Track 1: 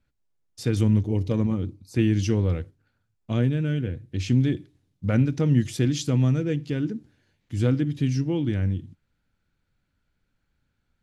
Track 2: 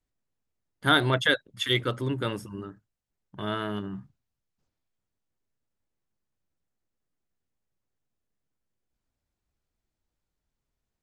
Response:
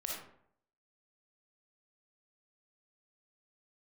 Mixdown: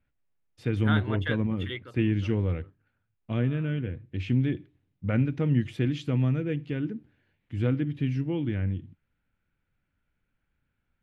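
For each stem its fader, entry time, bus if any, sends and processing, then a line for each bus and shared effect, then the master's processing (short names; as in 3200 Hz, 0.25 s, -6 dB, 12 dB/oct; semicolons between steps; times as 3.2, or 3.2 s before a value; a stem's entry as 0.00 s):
-4.0 dB, 0.00 s, no send, dry
1.73 s -2 dB -> 1.94 s -13 dB, 0.00 s, no send, auto duck -9 dB, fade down 1.05 s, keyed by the first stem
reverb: off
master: resonant high shelf 3900 Hz -14 dB, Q 1.5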